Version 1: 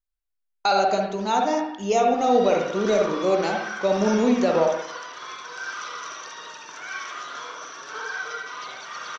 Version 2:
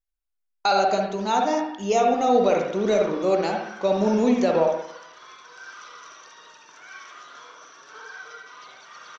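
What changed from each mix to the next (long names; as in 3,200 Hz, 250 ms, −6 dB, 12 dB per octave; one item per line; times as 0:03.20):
background −9.0 dB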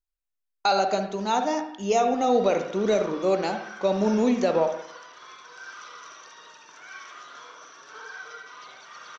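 speech: send −6.0 dB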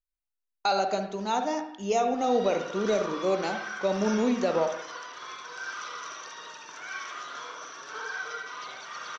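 speech −3.5 dB
background +5.0 dB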